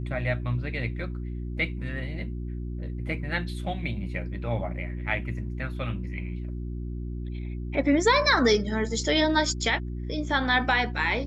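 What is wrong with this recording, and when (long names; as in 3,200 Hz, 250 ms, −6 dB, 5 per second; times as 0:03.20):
mains hum 60 Hz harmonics 6 −33 dBFS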